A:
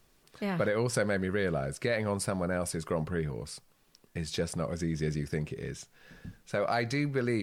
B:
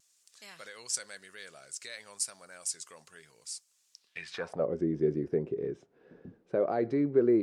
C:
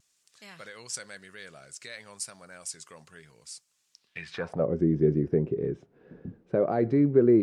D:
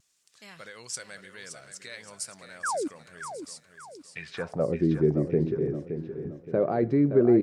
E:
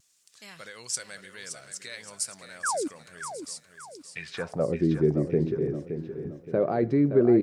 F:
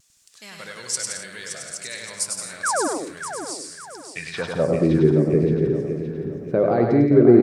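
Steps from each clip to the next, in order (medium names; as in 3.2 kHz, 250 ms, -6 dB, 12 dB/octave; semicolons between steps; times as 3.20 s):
band-pass sweep 7.1 kHz -> 380 Hz, 3.92–4.70 s; vibrato 0.96 Hz 23 cents; trim +8.5 dB
tone controls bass +9 dB, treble -6 dB; trim +2.5 dB
painted sound fall, 2.63–2.88 s, 260–1800 Hz -29 dBFS; on a send: feedback delay 570 ms, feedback 39%, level -9 dB
treble shelf 3.8 kHz +6 dB
bouncing-ball echo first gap 100 ms, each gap 0.7×, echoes 5; trim +5 dB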